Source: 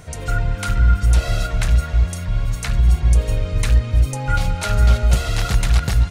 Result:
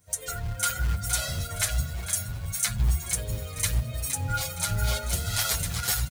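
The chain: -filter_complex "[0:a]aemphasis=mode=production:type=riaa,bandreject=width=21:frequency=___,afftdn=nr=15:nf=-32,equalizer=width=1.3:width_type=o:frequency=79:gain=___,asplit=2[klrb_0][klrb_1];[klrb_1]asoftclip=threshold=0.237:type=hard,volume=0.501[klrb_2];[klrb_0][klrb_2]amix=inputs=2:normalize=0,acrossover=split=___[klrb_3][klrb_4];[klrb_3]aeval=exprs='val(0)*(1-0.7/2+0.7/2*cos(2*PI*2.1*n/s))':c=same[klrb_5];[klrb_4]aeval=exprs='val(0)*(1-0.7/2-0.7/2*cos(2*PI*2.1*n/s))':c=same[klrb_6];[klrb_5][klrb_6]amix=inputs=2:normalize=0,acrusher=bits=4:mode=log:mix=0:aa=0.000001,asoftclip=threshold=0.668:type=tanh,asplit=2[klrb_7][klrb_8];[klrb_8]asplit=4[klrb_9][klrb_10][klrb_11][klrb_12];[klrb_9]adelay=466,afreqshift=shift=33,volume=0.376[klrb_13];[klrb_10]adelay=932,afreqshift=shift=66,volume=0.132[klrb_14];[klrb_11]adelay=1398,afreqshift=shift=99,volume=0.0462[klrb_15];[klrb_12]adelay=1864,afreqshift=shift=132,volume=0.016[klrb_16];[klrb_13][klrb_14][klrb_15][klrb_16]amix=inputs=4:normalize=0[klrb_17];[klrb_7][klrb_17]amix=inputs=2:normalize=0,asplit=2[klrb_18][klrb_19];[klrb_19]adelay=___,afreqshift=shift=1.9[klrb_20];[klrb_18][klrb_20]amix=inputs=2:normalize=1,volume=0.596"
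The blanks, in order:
2.7k, 13, 400, 8.1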